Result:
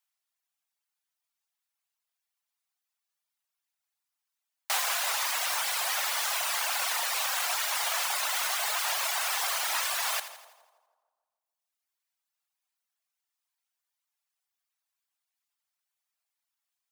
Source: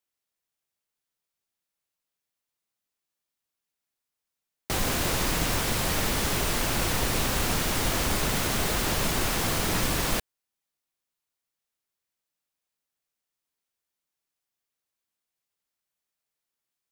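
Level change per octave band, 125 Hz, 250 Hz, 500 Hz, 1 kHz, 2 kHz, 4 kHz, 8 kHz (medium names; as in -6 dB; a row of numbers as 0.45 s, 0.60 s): under -40 dB, under -40 dB, -10.5 dB, -1.0 dB, -0.5 dB, -0.5 dB, -0.5 dB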